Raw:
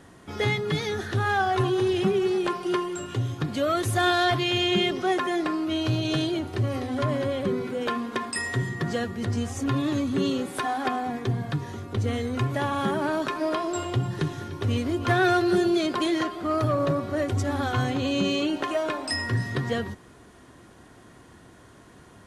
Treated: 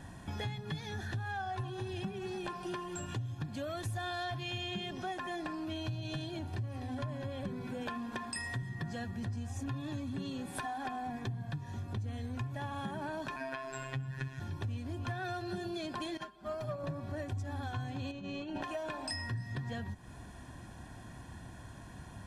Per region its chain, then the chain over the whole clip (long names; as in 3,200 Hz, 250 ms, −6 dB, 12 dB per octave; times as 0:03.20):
0:13.36–0:14.40: flat-topped bell 1,900 Hz +9.5 dB 1.1 octaves + phases set to zero 133 Hz
0:16.17–0:16.84: comb filter 5 ms, depth 92% + expander for the loud parts 2.5 to 1, over −33 dBFS
0:18.11–0:18.62: low-pass filter 2,300 Hz 6 dB per octave + compressor whose output falls as the input rises −30 dBFS, ratio −0.5
whole clip: low-shelf EQ 160 Hz +7.5 dB; comb filter 1.2 ms, depth 56%; downward compressor 5 to 1, threshold −35 dBFS; level −2.5 dB